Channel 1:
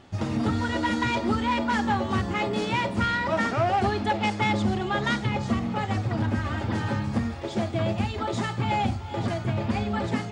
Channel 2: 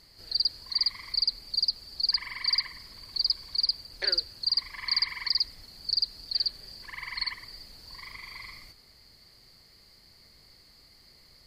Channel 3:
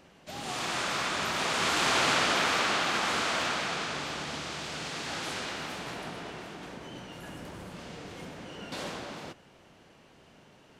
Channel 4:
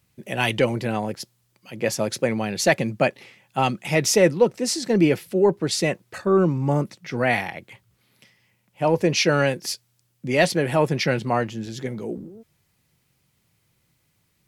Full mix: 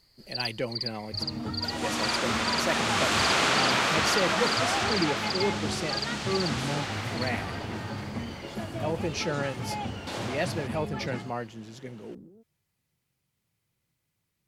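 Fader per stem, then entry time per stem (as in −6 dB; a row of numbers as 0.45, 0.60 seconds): −9.0, −7.0, +1.5, −11.5 decibels; 1.00, 0.00, 1.35, 0.00 seconds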